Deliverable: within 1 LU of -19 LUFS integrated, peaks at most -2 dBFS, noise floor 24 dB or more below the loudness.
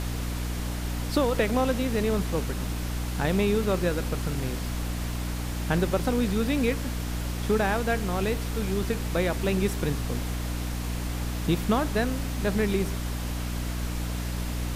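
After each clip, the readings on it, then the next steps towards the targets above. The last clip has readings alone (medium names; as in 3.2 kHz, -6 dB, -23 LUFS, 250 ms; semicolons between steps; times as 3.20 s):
hum 60 Hz; highest harmonic 300 Hz; hum level -28 dBFS; noise floor -31 dBFS; noise floor target -52 dBFS; loudness -28.0 LUFS; peak level -11.0 dBFS; loudness target -19.0 LUFS
-> de-hum 60 Hz, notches 5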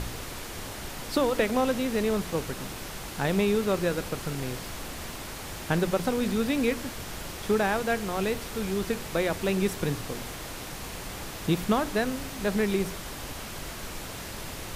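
hum not found; noise floor -39 dBFS; noise floor target -54 dBFS
-> noise print and reduce 15 dB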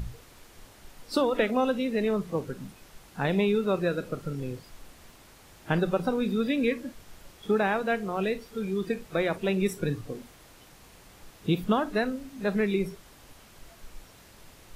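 noise floor -54 dBFS; loudness -28.5 LUFS; peak level -12.0 dBFS; loudness target -19.0 LUFS
-> trim +9.5 dB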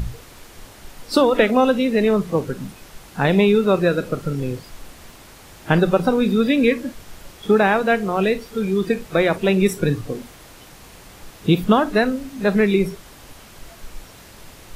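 loudness -19.0 LUFS; peak level -2.5 dBFS; noise floor -44 dBFS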